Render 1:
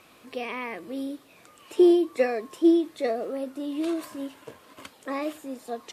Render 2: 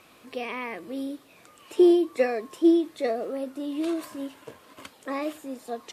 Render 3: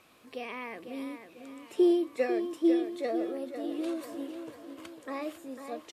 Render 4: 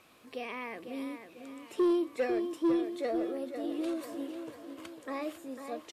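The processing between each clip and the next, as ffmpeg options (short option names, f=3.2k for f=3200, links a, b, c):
-af anull
-filter_complex "[0:a]asplit=2[a][b];[b]adelay=498,lowpass=f=4.6k:p=1,volume=-8.5dB,asplit=2[c][d];[d]adelay=498,lowpass=f=4.6k:p=1,volume=0.48,asplit=2[e][f];[f]adelay=498,lowpass=f=4.6k:p=1,volume=0.48,asplit=2[g][h];[h]adelay=498,lowpass=f=4.6k:p=1,volume=0.48,asplit=2[i][j];[j]adelay=498,lowpass=f=4.6k:p=1,volume=0.48[k];[a][c][e][g][i][k]amix=inputs=6:normalize=0,volume=-6dB"
-af "asoftclip=type=tanh:threshold=-22dB"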